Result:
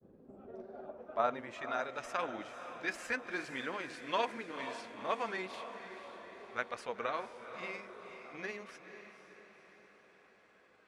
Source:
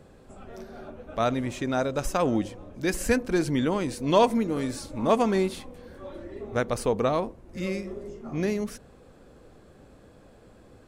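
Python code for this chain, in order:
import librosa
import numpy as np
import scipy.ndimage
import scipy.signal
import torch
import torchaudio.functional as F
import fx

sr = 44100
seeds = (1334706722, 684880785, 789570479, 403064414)

y = fx.granulator(x, sr, seeds[0], grain_ms=100.0, per_s=20.0, spray_ms=10.0, spread_st=0)
y = fx.filter_sweep_bandpass(y, sr, from_hz=280.0, to_hz=1900.0, start_s=0.22, end_s=1.72, q=1.2)
y = fx.echo_diffused(y, sr, ms=499, feedback_pct=55, wet_db=-10)
y = F.gain(torch.from_numpy(y), -1.5).numpy()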